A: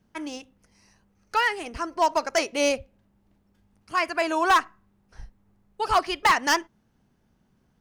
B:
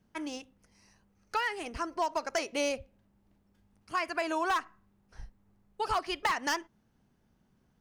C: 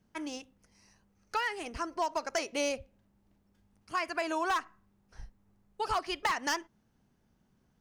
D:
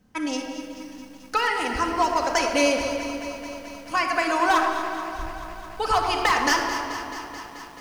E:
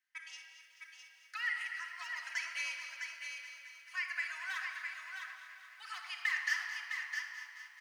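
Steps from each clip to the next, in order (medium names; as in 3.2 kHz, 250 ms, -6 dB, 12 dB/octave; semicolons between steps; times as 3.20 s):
compression 4:1, threshold -24 dBFS, peak gain reduction 7.5 dB; trim -3.5 dB
peaking EQ 6.2 kHz +2 dB; trim -1 dB
on a send: echo whose repeats swap between lows and highs 121 ms, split 1.2 kHz, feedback 57%, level -8 dB; on the sum: simulated room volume 3800 m³, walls mixed, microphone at 2 m; bit-crushed delay 217 ms, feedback 80%, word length 9-bit, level -13 dB; trim +8 dB
ladder high-pass 1.7 kHz, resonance 65%; on a send: delay 659 ms -6 dB; on the sum: trim -7.5 dB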